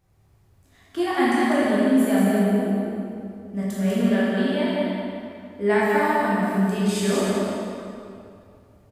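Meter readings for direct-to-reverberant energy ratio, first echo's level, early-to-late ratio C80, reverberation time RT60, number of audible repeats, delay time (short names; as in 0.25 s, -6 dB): -9.5 dB, -3.5 dB, -3.5 dB, 2.5 s, 1, 0.196 s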